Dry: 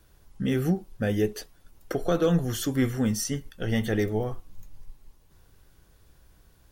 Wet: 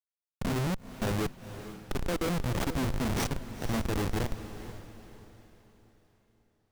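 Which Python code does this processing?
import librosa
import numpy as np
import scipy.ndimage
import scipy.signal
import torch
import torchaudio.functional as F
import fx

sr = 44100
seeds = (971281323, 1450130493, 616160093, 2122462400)

y = fx.high_shelf(x, sr, hz=12000.0, db=5.5)
y = fx.schmitt(y, sr, flips_db=-25.0)
y = fx.echo_diffused(y, sr, ms=474, feedback_pct=41, wet_db=-12)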